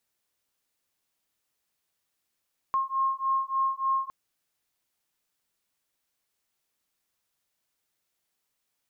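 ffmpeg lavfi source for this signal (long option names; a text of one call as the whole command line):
ffmpeg -f lavfi -i "aevalsrc='0.0422*(sin(2*PI*1070*t)+sin(2*PI*1073.4*t))':duration=1.36:sample_rate=44100" out.wav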